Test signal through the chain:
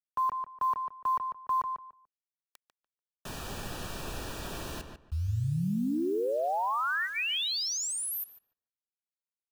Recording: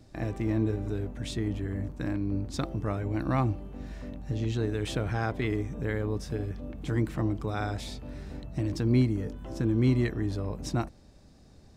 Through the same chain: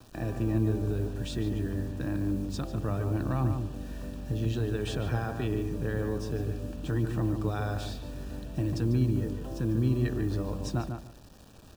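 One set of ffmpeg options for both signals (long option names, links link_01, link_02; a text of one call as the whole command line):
ffmpeg -i in.wav -filter_complex "[0:a]highshelf=frequency=6000:gain=-5,acrossover=split=140[link_01][link_02];[link_02]alimiter=limit=-24dB:level=0:latency=1:release=51[link_03];[link_01][link_03]amix=inputs=2:normalize=0,acrusher=bits=8:mix=0:aa=0.000001,asuperstop=centerf=2100:order=8:qfactor=5.6,asplit=2[link_04][link_05];[link_05]adelay=146,lowpass=frequency=2500:poles=1,volume=-6dB,asplit=2[link_06][link_07];[link_07]adelay=146,lowpass=frequency=2500:poles=1,volume=0.21,asplit=2[link_08][link_09];[link_09]adelay=146,lowpass=frequency=2500:poles=1,volume=0.21[link_10];[link_06][link_08][link_10]amix=inputs=3:normalize=0[link_11];[link_04][link_11]amix=inputs=2:normalize=0" -ar 44100 -c:a libvorbis -b:a 192k out.ogg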